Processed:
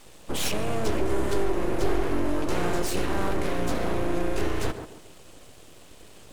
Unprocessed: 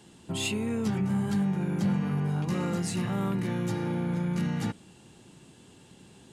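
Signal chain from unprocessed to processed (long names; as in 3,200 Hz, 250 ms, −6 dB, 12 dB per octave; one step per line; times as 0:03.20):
variable-slope delta modulation 64 kbit/s
full-wave rectification
tape delay 138 ms, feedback 40%, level −5 dB, low-pass 1,100 Hz
level +6 dB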